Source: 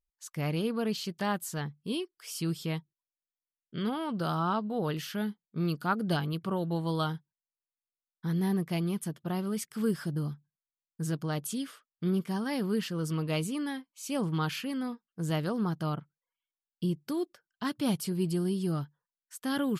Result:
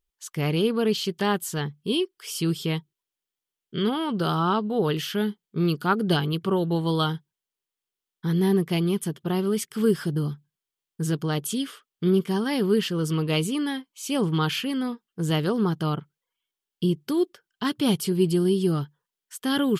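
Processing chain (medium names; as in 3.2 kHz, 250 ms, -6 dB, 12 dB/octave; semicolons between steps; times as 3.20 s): graphic EQ with 31 bands 400 Hz +8 dB, 630 Hz -4 dB, 3.15 kHz +6 dB; trim +6 dB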